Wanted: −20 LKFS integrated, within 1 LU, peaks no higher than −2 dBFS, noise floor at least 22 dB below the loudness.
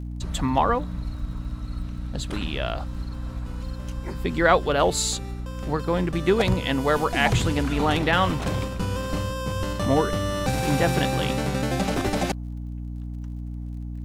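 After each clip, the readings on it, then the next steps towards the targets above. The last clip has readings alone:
crackle rate 49 per second; mains hum 60 Hz; hum harmonics up to 300 Hz; level of the hum −30 dBFS; integrated loudness −25.5 LKFS; sample peak −4.0 dBFS; target loudness −20.0 LKFS
→ click removal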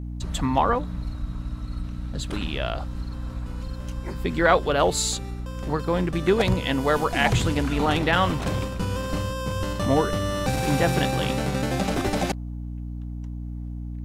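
crackle rate 0.28 per second; mains hum 60 Hz; hum harmonics up to 300 Hz; level of the hum −30 dBFS
→ mains-hum notches 60/120/180/240/300 Hz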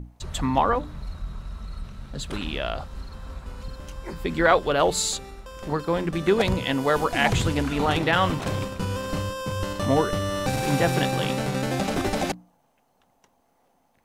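mains hum none found; integrated loudness −24.5 LKFS; sample peak −4.5 dBFS; target loudness −20.0 LKFS
→ level +4.5 dB
brickwall limiter −2 dBFS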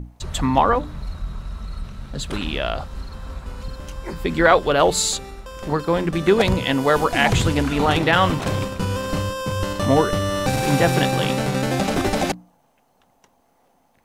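integrated loudness −20.0 LKFS; sample peak −2.0 dBFS; background noise floor −62 dBFS

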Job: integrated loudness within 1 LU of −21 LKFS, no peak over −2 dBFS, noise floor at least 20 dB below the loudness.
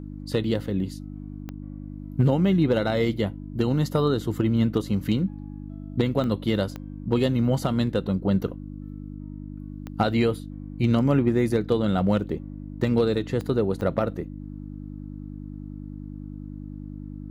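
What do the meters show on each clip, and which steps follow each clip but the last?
number of clicks 6; mains hum 50 Hz; hum harmonics up to 300 Hz; level of the hum −35 dBFS; integrated loudness −24.5 LKFS; sample peak −9.0 dBFS; target loudness −21.0 LKFS
→ click removal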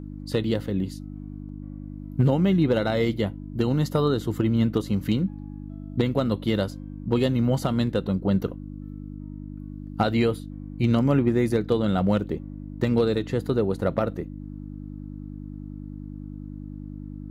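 number of clicks 0; mains hum 50 Hz; hum harmonics up to 300 Hz; level of the hum −35 dBFS
→ hum removal 50 Hz, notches 6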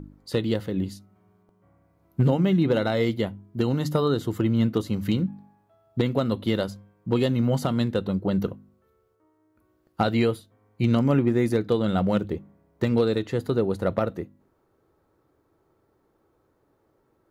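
mains hum none found; integrated loudness −25.0 LKFS; sample peak −8.5 dBFS; target loudness −21.0 LKFS
→ level +4 dB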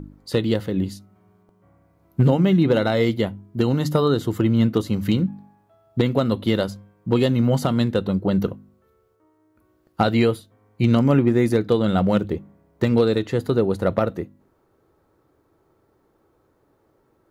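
integrated loudness −21.0 LKFS; sample peak −4.5 dBFS; background noise floor −64 dBFS

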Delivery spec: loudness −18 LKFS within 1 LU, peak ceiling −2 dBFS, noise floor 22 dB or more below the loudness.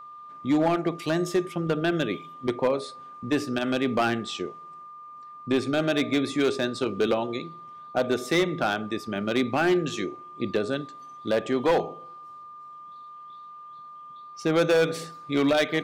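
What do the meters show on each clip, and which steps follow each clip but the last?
share of clipped samples 1.5%; peaks flattened at −16.5 dBFS; interfering tone 1,200 Hz; level of the tone −41 dBFS; integrated loudness −26.5 LKFS; sample peak −16.5 dBFS; target loudness −18.0 LKFS
→ clipped peaks rebuilt −16.5 dBFS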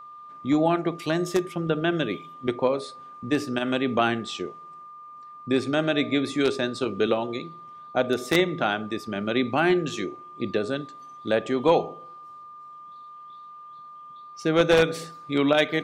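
share of clipped samples 0.0%; interfering tone 1,200 Hz; level of the tone −41 dBFS
→ notch filter 1,200 Hz, Q 30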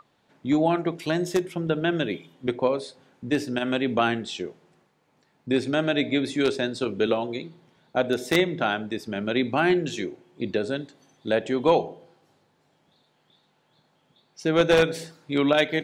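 interfering tone none found; integrated loudness −25.0 LKFS; sample peak −7.5 dBFS; target loudness −18.0 LKFS
→ level +7 dB
brickwall limiter −2 dBFS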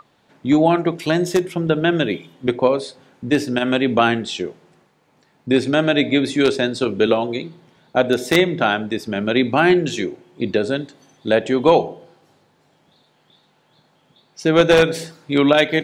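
integrated loudness −18.5 LKFS; sample peak −2.0 dBFS; background noise floor −60 dBFS

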